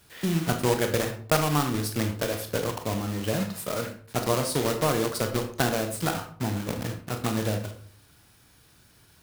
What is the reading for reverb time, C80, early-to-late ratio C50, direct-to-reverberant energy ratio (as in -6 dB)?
0.50 s, 13.0 dB, 9.0 dB, 5.0 dB